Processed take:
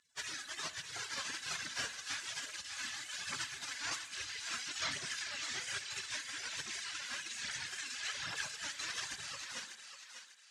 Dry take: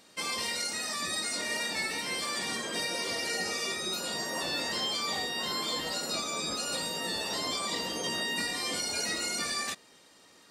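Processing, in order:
fade-out on the ending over 1.58 s
gate on every frequency bin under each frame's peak −25 dB weak
reverb reduction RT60 1.1 s
phase shifter 1.2 Hz, delay 4.2 ms, feedback 49%
formants moved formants +3 semitones
loudspeaker in its box 130–7,100 Hz, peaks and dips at 240 Hz +5 dB, 770 Hz −5 dB, 1,700 Hz +5 dB
feedback echo with a high-pass in the loop 595 ms, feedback 36%, high-pass 890 Hz, level −7 dB
spring reverb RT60 1 s, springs 38/59 ms, chirp 50 ms, DRR 13 dB
level +10 dB

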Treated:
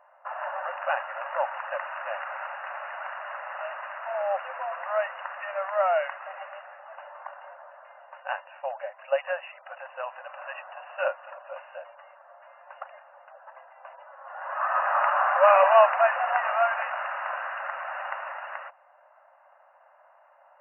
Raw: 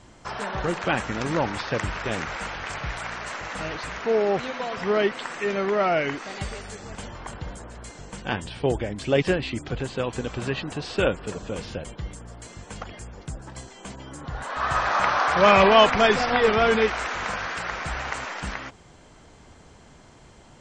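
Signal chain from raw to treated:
low-pass that shuts in the quiet parts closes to 1,800 Hz, open at −20 dBFS
linear-phase brick-wall band-pass 530–2,900 Hz
parametric band 2,300 Hz −14 dB 0.43 octaves

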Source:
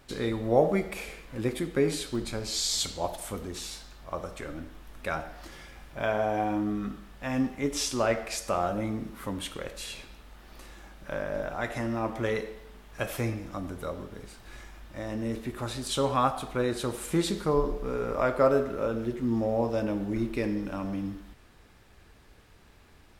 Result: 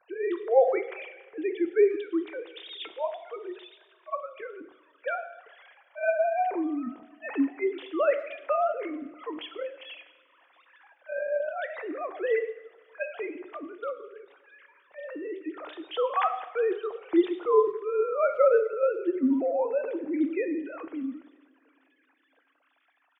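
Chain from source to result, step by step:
three sine waves on the formant tracks
far-end echo of a speakerphone 110 ms, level −28 dB
coupled-rooms reverb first 0.84 s, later 3.2 s, from −19 dB, DRR 10.5 dB
level +1 dB

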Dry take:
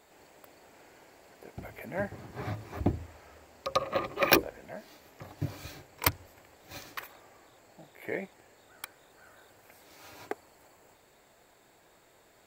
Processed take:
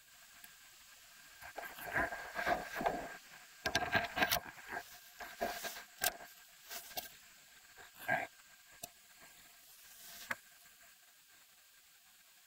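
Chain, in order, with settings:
gate on every frequency bin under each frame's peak −15 dB weak
downward compressor 6 to 1, threshold −37 dBFS, peak gain reduction 12.5 dB
hollow resonant body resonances 700/1,600 Hz, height 15 dB, ringing for 45 ms
level +5 dB

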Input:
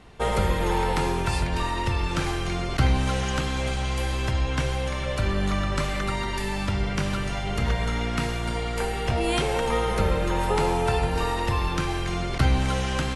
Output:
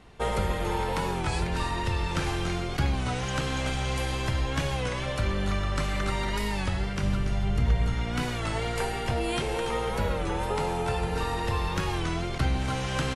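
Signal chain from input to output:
0:07.03–0:07.94: low-shelf EQ 270 Hz +11 dB
on a send: single-tap delay 284 ms −8.5 dB
on the sum: speech leveller within 4 dB 0.5 s
wow of a warped record 33 1/3 rpm, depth 100 cents
level −4.5 dB

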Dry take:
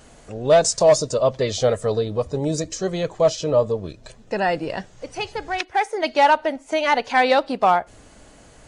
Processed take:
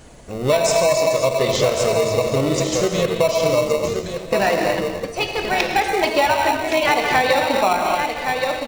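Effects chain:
feedback delay that plays each chunk backwards 108 ms, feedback 84%, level −13.5 dB
reverb reduction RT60 1.6 s
on a send: single-tap delay 1,117 ms −9.5 dB
on the sum: reverb whose tail is shaped and stops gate 290 ms flat, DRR 2 dB
in parallel at −7 dB: decimation without filtering 27×
on the sum: parametric band 160 Hz −3 dB 0.36 octaves
downward compressor, threshold −16 dBFS, peak gain reduction 9 dB
dynamic equaliser 3,000 Hz, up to +4 dB, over −38 dBFS, Q 0.82
level +2 dB

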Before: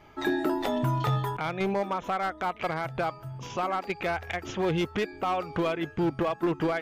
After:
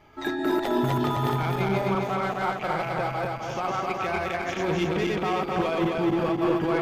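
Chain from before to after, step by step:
feedback delay that plays each chunk backwards 130 ms, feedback 76%, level −0.5 dB
level −1.5 dB

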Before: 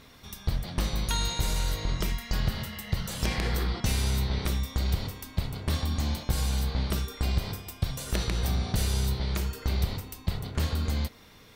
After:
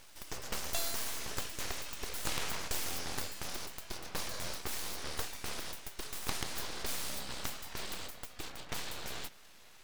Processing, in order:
gliding playback speed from 151% → 84%
Bessel high-pass filter 300 Hz, order 6
full-wave rectification

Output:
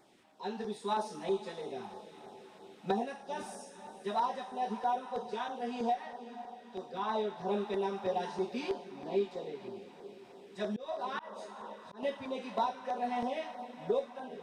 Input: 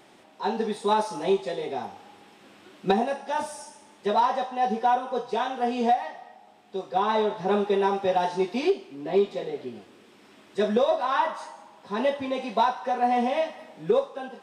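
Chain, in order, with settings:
feedback delay with all-pass diffusion 512 ms, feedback 59%, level −13 dB
auto-filter notch saw down 3.1 Hz 270–3,200 Hz
0:10.59–0:12.03: volume swells 227 ms
level −9 dB

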